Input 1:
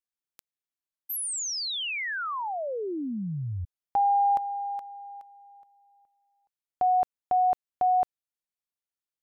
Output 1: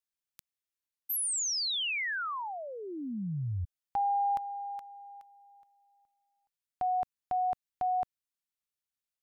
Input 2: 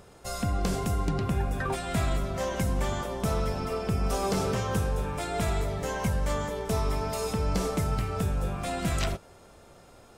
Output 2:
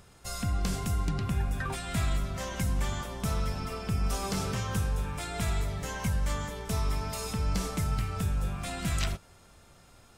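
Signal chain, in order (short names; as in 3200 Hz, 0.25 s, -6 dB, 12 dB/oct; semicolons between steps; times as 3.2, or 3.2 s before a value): bell 490 Hz -9.5 dB 2 oct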